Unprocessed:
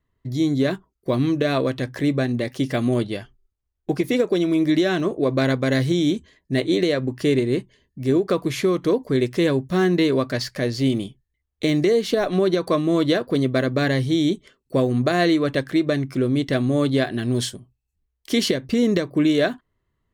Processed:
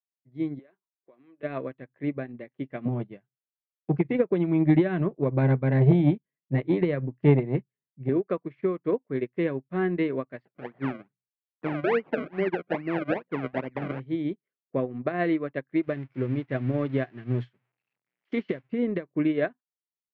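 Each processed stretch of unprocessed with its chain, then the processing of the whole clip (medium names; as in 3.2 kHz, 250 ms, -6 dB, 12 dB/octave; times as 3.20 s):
0.59–1.43 s: high-pass 400 Hz + compression 8:1, threshold -26 dBFS
2.85–8.09 s: peaking EQ 140 Hz +12 dB 0.95 oct + transformer saturation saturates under 240 Hz
10.45–14.00 s: hum notches 60/120/180 Hz + decimation with a swept rate 34× 2.4 Hz
15.83–18.72 s: zero-crossing glitches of -15 dBFS + low-pass 6.8 kHz + peaking EQ 120 Hz +11 dB 0.25 oct
whole clip: Chebyshev band-pass 140–2300 Hz, order 3; upward expansion 2.5:1, over -38 dBFS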